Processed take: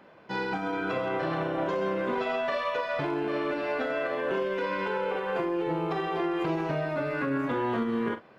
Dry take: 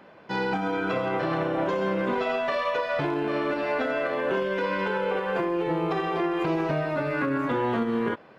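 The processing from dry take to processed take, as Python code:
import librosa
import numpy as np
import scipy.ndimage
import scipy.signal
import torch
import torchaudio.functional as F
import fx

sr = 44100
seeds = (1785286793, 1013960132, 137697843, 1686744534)

y = fx.doubler(x, sr, ms=44.0, db=-10.5)
y = y * 10.0 ** (-3.5 / 20.0)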